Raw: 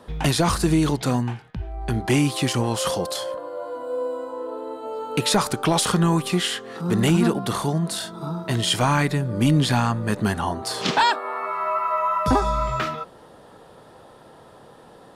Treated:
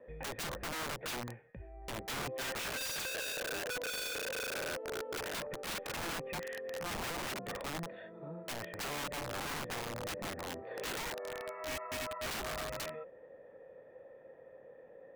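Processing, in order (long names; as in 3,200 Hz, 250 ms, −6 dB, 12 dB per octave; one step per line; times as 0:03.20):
treble cut that deepens with the level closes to 910 Hz, closed at −16.5 dBFS
formant resonators in series e
wrap-around overflow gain 35 dB
level +1 dB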